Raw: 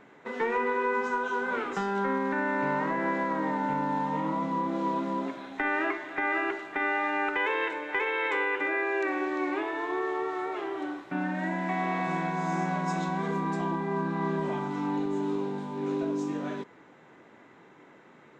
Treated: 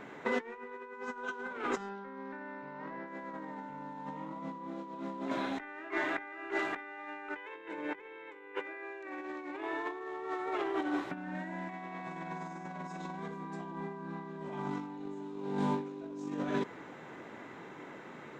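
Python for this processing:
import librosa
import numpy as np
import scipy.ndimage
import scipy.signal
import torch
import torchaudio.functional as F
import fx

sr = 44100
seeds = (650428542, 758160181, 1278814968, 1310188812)

y = fx.cheby1_lowpass(x, sr, hz=5200.0, order=3, at=(1.89, 3.07))
y = fx.peak_eq(y, sr, hz=220.0, db=11.0, octaves=2.0, at=(7.55, 8.54), fade=0.02)
y = fx.over_compress(y, sr, threshold_db=-36.0, ratio=-0.5)
y = F.gain(torch.from_numpy(y), -1.5).numpy()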